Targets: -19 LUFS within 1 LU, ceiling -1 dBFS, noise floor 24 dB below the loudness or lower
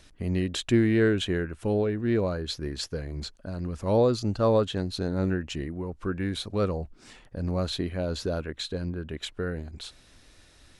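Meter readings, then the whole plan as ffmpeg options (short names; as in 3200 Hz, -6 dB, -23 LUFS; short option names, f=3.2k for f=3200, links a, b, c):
loudness -28.5 LUFS; peak -11.5 dBFS; loudness target -19.0 LUFS
-> -af "volume=9.5dB"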